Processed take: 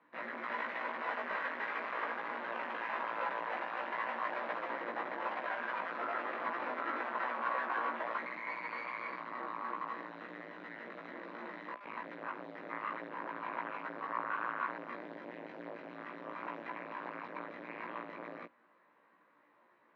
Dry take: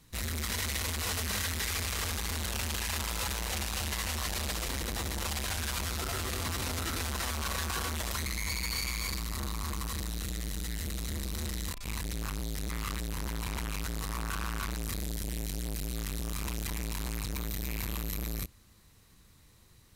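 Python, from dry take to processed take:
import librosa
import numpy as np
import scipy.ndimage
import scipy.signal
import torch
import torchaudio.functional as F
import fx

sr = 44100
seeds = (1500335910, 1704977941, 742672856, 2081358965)

y = fx.cabinet(x, sr, low_hz=300.0, low_slope=24, high_hz=2000.0, hz=(410.0, 590.0, 1000.0, 1600.0), db=(-6, 6, 6, 3))
y = fx.doubler(y, sr, ms=17.0, db=-2)
y = y * librosa.db_to_amplitude(-2.0)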